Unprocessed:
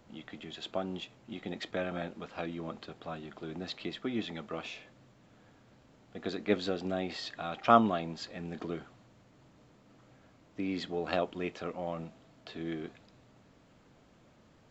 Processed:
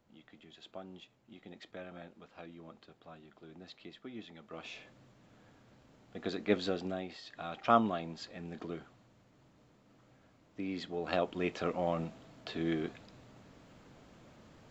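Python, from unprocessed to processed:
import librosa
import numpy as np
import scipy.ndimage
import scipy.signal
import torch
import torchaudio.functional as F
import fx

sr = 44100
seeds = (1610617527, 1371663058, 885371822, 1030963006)

y = fx.gain(x, sr, db=fx.line((4.4, -12.0), (4.8, -1.0), (6.78, -1.0), (7.24, -11.0), (7.4, -4.0), (10.9, -4.0), (11.64, 4.0)))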